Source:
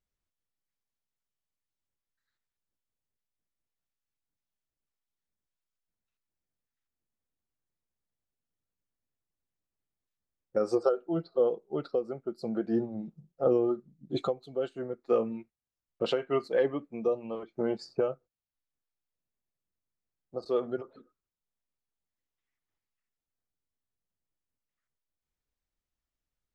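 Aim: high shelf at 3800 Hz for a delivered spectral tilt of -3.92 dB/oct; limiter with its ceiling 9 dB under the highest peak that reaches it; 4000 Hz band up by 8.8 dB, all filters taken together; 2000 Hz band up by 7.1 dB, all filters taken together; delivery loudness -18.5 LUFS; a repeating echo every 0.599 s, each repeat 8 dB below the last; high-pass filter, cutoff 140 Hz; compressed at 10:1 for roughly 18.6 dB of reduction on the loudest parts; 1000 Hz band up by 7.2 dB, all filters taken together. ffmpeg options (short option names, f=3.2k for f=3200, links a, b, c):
-af "highpass=140,equalizer=f=1k:t=o:g=8,equalizer=f=2k:t=o:g=3.5,highshelf=f=3.8k:g=6,equalizer=f=4k:t=o:g=6,acompressor=threshold=-38dB:ratio=10,alimiter=level_in=9.5dB:limit=-24dB:level=0:latency=1,volume=-9.5dB,aecho=1:1:599|1198|1797|2396|2995:0.398|0.159|0.0637|0.0255|0.0102,volume=27.5dB"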